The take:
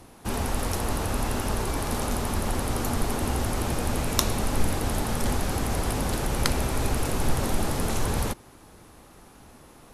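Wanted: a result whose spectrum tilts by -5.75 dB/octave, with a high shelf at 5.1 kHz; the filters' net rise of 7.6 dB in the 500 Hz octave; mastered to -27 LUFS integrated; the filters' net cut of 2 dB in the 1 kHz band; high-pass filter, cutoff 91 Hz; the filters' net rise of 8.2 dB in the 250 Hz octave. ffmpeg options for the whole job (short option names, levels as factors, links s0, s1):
-af "highpass=91,equalizer=f=250:t=o:g=8,equalizer=f=500:t=o:g=8.5,equalizer=f=1000:t=o:g=-6.5,highshelf=f=5100:g=-4.5,volume=0.75"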